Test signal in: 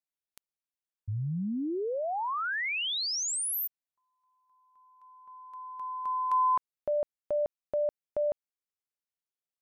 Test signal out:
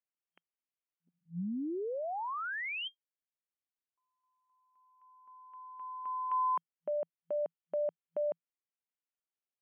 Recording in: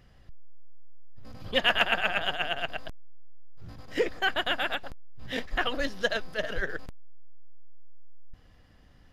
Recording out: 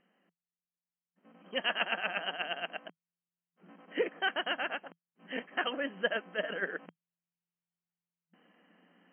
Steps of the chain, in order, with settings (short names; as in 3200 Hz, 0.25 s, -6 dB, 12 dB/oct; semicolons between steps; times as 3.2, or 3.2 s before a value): FFT band-pass 170–3200 Hz; vocal rider within 4 dB 2 s; gain -5 dB